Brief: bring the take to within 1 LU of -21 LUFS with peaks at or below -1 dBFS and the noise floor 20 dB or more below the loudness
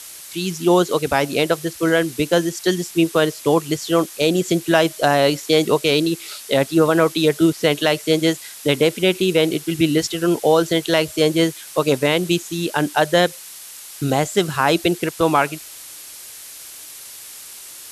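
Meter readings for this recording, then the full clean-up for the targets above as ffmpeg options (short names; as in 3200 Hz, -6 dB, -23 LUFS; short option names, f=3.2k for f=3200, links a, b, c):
noise floor -38 dBFS; noise floor target -39 dBFS; loudness -18.5 LUFS; peak -2.0 dBFS; loudness target -21.0 LUFS
-> -af "afftdn=nr=6:nf=-38"
-af "volume=-2.5dB"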